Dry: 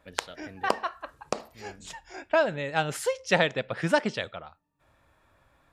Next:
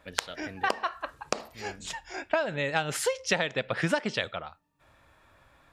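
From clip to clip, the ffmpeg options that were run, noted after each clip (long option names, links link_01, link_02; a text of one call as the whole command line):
ffmpeg -i in.wav -af "equalizer=frequency=3000:width_type=o:width=2.8:gain=3.5,acompressor=threshold=-25dB:ratio=10,volume=2.5dB" out.wav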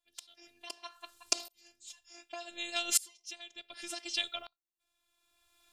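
ffmpeg -i in.wav -af "afftfilt=real='hypot(re,im)*cos(PI*b)':imag='0':win_size=512:overlap=0.75,aexciter=amount=5.3:drive=7:freq=2600,aeval=exprs='val(0)*pow(10,-27*if(lt(mod(-0.67*n/s,1),2*abs(-0.67)/1000),1-mod(-0.67*n/s,1)/(2*abs(-0.67)/1000),(mod(-0.67*n/s,1)-2*abs(-0.67)/1000)/(1-2*abs(-0.67)/1000))/20)':channel_layout=same,volume=-4.5dB" out.wav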